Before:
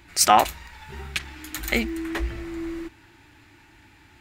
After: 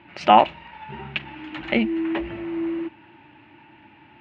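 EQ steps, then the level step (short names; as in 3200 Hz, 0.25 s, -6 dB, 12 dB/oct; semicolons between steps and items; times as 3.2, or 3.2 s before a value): dynamic EQ 1300 Hz, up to -4 dB, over -35 dBFS, Q 0.92; speaker cabinet 120–3000 Hz, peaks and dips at 140 Hz +8 dB, 210 Hz +9 dB, 320 Hz +6 dB, 590 Hz +9 dB, 900 Hz +9 dB, 2800 Hz +8 dB; -1.0 dB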